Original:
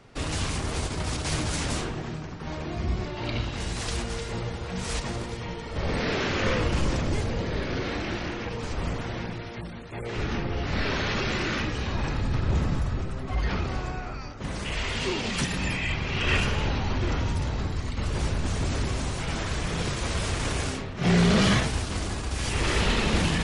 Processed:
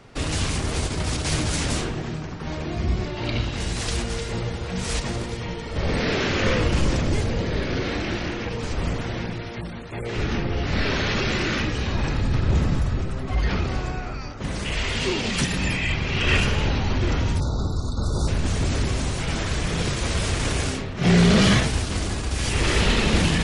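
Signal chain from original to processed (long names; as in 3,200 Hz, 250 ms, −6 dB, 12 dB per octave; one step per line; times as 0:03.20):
dynamic equaliser 1,000 Hz, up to −3 dB, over −43 dBFS, Q 1.1
time-frequency box erased 0:17.40–0:18.28, 1,500–3,500 Hz
level +4.5 dB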